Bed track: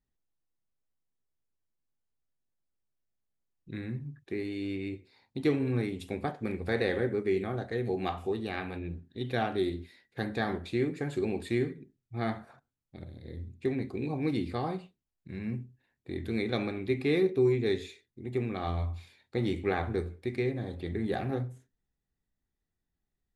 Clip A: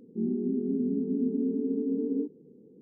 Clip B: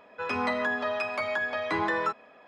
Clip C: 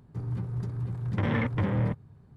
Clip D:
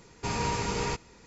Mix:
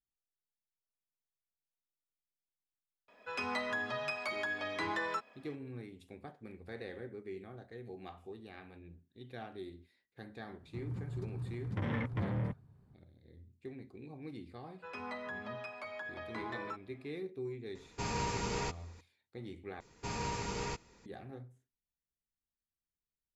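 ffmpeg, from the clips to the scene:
-filter_complex "[2:a]asplit=2[s0][s1];[4:a]asplit=2[s2][s3];[0:a]volume=0.158[s4];[s0]highshelf=f=3100:g=11.5[s5];[3:a]aresample=32000,aresample=44100[s6];[s4]asplit=2[s7][s8];[s7]atrim=end=19.804[s9];[s3]atrim=end=1.26,asetpts=PTS-STARTPTS,volume=0.398[s10];[s8]atrim=start=21.056[s11];[s5]atrim=end=2.47,asetpts=PTS-STARTPTS,volume=0.316,afade=t=in:d=0.004:c=hsin,afade=t=out:st=2.466:d=0.004:c=hsin,adelay=3080[s12];[s6]atrim=end=2.36,asetpts=PTS-STARTPTS,volume=0.376,afade=t=in:d=0.004:c=hsin,afade=t=out:st=2.356:d=0.004:c=hsin,adelay=10590[s13];[s1]atrim=end=2.47,asetpts=PTS-STARTPTS,volume=0.188,afade=t=in:d=0.004:c=hsin,afade=t=out:st=2.466:d=0.004:c=hsin,adelay=14640[s14];[s2]atrim=end=1.26,asetpts=PTS-STARTPTS,volume=0.501,afade=t=in:d=0.004:c=hsin,afade=t=out:st=1.256:d=0.004:c=hsin,adelay=17750[s15];[s9][s10]acrossfade=d=0.004:c1=hsin:c2=hsin[s16];[s16][s11]acrossfade=d=0.004:c1=hsin:c2=hsin[s17];[s17][s12][s13][s14][s15]amix=inputs=5:normalize=0"

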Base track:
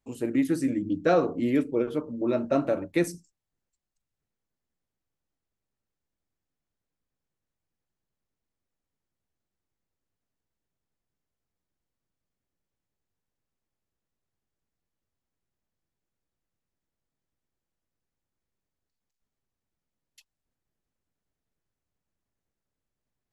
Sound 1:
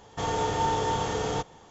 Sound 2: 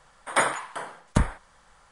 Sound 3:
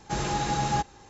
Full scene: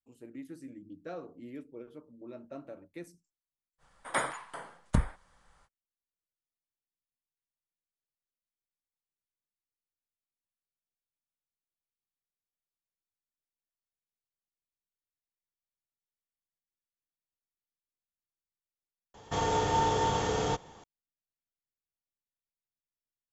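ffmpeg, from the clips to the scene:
-filter_complex "[0:a]volume=0.1[s0];[2:a]lowshelf=f=250:g=5.5[s1];[s0]asplit=2[s2][s3];[s2]atrim=end=19.144[s4];[1:a]atrim=end=1.7,asetpts=PTS-STARTPTS,volume=0.891[s5];[s3]atrim=start=20.836[s6];[s1]atrim=end=1.91,asetpts=PTS-STARTPTS,volume=0.355,afade=t=in:d=0.05,afade=t=out:st=1.86:d=0.05,adelay=3780[s7];[s4][s5]acrossfade=d=0.004:c1=hsin:c2=hsin[s8];[s8][s6]acrossfade=d=0.004:c1=hsin:c2=hsin[s9];[s9][s7]amix=inputs=2:normalize=0"

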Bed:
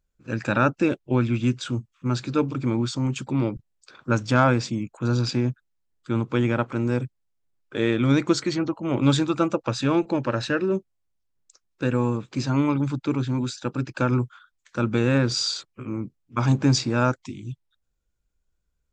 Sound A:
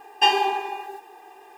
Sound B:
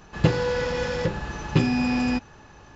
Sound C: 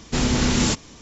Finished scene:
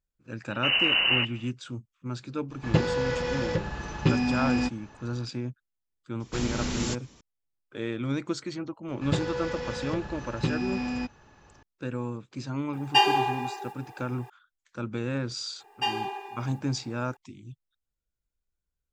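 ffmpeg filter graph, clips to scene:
-filter_complex "[3:a]asplit=2[s0][s1];[2:a]asplit=2[s2][s3];[1:a]asplit=2[s4][s5];[0:a]volume=0.316[s6];[s0]lowpass=f=2600:t=q:w=0.5098,lowpass=f=2600:t=q:w=0.6013,lowpass=f=2600:t=q:w=0.9,lowpass=f=2600:t=q:w=2.563,afreqshift=-3000,atrim=end=1.01,asetpts=PTS-STARTPTS,volume=0.668,afade=t=in:d=0.004:c=hsin,afade=t=out:st=1.006:d=0.004:c=hsin,adelay=500[s7];[s2]atrim=end=2.75,asetpts=PTS-STARTPTS,volume=0.708,afade=t=in:d=0.004:c=hsin,afade=t=out:st=2.746:d=0.004:c=hsin,adelay=2500[s8];[s1]atrim=end=1.01,asetpts=PTS-STARTPTS,volume=0.299,afade=t=in:d=0.004:c=hsin,afade=t=out:st=1.006:d=0.004:c=hsin,adelay=6200[s9];[s3]atrim=end=2.75,asetpts=PTS-STARTPTS,volume=0.422,afade=t=in:d=0.004:c=hsin,afade=t=out:st=2.746:d=0.004:c=hsin,adelay=8880[s10];[s4]atrim=end=1.57,asetpts=PTS-STARTPTS,volume=0.794,afade=t=in:d=0.004:c=hsin,afade=t=out:st=1.566:d=0.004:c=hsin,adelay=12730[s11];[s5]atrim=end=1.57,asetpts=PTS-STARTPTS,volume=0.299,afade=t=in:d=0.004:c=hsin,afade=t=out:st=1.566:d=0.004:c=hsin,adelay=15600[s12];[s6][s7][s8][s9][s10][s11][s12]amix=inputs=7:normalize=0"

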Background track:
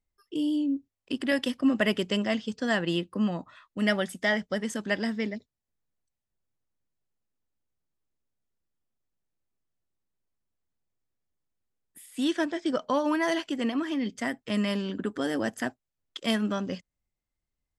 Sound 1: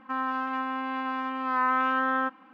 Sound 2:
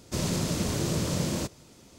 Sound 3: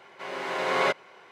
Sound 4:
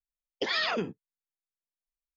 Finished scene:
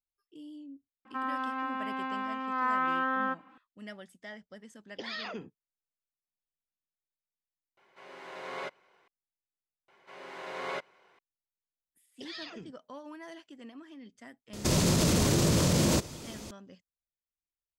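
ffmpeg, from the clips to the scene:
-filter_complex "[4:a]asplit=2[s0][s1];[3:a]asplit=2[s2][s3];[0:a]volume=0.106[s4];[s1]equalizer=f=900:w=0.37:g=-12[s5];[2:a]alimiter=level_in=17.8:limit=0.891:release=50:level=0:latency=1[s6];[1:a]atrim=end=2.53,asetpts=PTS-STARTPTS,volume=0.631,afade=t=in:d=0.004:c=hsin,afade=t=out:st=2.526:d=0.004:c=hsin,adelay=1050[s7];[s0]atrim=end=2.16,asetpts=PTS-STARTPTS,volume=0.316,afade=t=in:d=0.004:c=hsin,afade=t=out:st=2.156:d=0.004:c=hsin,adelay=201537S[s8];[s2]atrim=end=1.31,asetpts=PTS-STARTPTS,volume=0.188,afade=t=in:d=0.004:c=hsin,afade=t=out:st=1.306:d=0.004:c=hsin,adelay=7770[s9];[s3]atrim=end=1.31,asetpts=PTS-STARTPTS,volume=0.251,afade=t=in:d=0.004:c=hsin,afade=t=out:st=1.306:d=0.004:c=hsin,adelay=9880[s10];[s5]atrim=end=2.16,asetpts=PTS-STARTPTS,volume=0.376,afade=t=in:d=0.004:c=hsin,afade=t=out:st=2.156:d=0.004:c=hsin,adelay=11790[s11];[s6]atrim=end=1.98,asetpts=PTS-STARTPTS,volume=0.168,afade=t=in:d=0.004:c=hsin,afade=t=out:st=1.976:d=0.004:c=hsin,adelay=14530[s12];[s4][s7][s8][s9][s10][s11][s12]amix=inputs=7:normalize=0"

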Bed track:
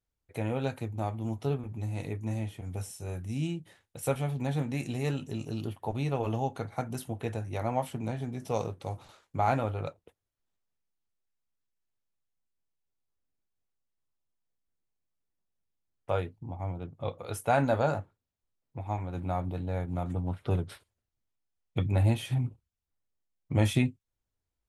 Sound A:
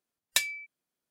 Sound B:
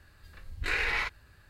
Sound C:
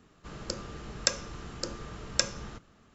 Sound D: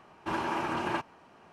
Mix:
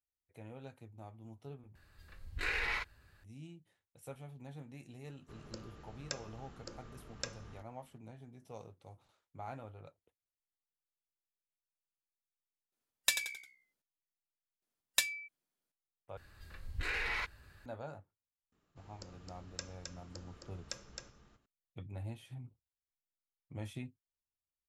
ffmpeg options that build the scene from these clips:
-filter_complex "[2:a]asplit=2[s0][s1];[3:a]asplit=2[s2][s3];[1:a]asplit=2[s4][s5];[0:a]volume=0.119[s6];[s2]highshelf=f=4000:g=-5.5[s7];[s4]asplit=5[s8][s9][s10][s11][s12];[s9]adelay=88,afreqshift=-64,volume=0.355[s13];[s10]adelay=176,afreqshift=-128,volume=0.135[s14];[s11]adelay=264,afreqshift=-192,volume=0.0513[s15];[s12]adelay=352,afreqshift=-256,volume=0.0195[s16];[s8][s13][s14][s15][s16]amix=inputs=5:normalize=0[s17];[s1]alimiter=level_in=1.33:limit=0.0631:level=0:latency=1:release=18,volume=0.75[s18];[s3]aecho=1:1:265:0.596[s19];[s6]asplit=3[s20][s21][s22];[s20]atrim=end=1.754[s23];[s0]atrim=end=1.49,asetpts=PTS-STARTPTS,volume=0.501[s24];[s21]atrim=start=3.236:end=16.174[s25];[s18]atrim=end=1.49,asetpts=PTS-STARTPTS,volume=0.841[s26];[s22]atrim=start=17.656[s27];[s7]atrim=end=2.94,asetpts=PTS-STARTPTS,volume=0.251,afade=t=in:d=0.004:c=hsin,afade=t=out:st=2.936:d=0.004:c=hsin,adelay=5040[s28];[s17]atrim=end=1.1,asetpts=PTS-STARTPTS,volume=0.596,afade=t=in:d=0.004:c=hsin,afade=t=out:st=1.096:d=0.004:c=hsin,adelay=12720[s29];[s5]atrim=end=1.1,asetpts=PTS-STARTPTS,volume=0.596,afade=t=in:d=0.004:c=hsin,afade=t=out:st=1.096:d=0.004:c=hsin,adelay=14620[s30];[s19]atrim=end=2.94,asetpts=PTS-STARTPTS,volume=0.133,afade=t=in:d=0.004:c=hsin,afade=t=out:st=2.936:d=0.004:c=hsin,adelay=18520[s31];[s23][s24]acrossfade=d=0.004:c1=hsin:c2=hsin[s32];[s32][s25]acrossfade=d=0.004:c1=hsin:c2=hsin[s33];[s33][s26]acrossfade=d=0.004:c1=hsin:c2=hsin[s34];[s34][s27]acrossfade=d=0.004:c1=hsin:c2=hsin[s35];[s35][s28][s29][s30][s31]amix=inputs=5:normalize=0"

